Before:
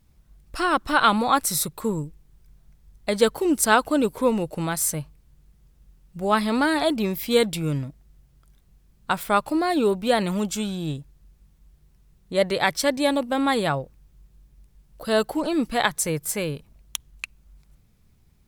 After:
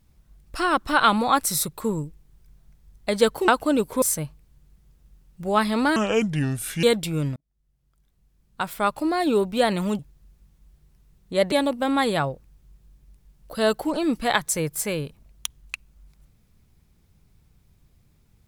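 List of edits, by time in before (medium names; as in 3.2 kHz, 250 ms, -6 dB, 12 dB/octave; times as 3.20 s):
3.48–3.73 s: delete
4.27–4.78 s: delete
6.72–7.33 s: speed 70%
7.86–9.79 s: fade in linear
10.49–10.99 s: delete
12.52–13.02 s: delete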